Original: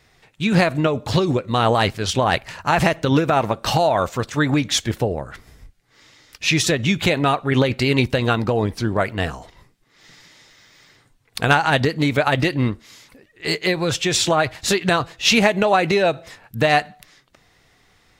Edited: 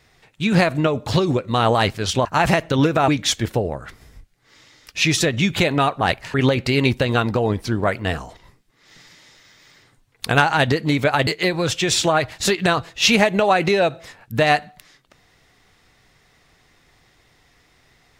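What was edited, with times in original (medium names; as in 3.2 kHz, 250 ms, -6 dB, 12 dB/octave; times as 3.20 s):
2.25–2.58 s: move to 7.47 s
3.41–4.54 s: delete
12.40–13.50 s: delete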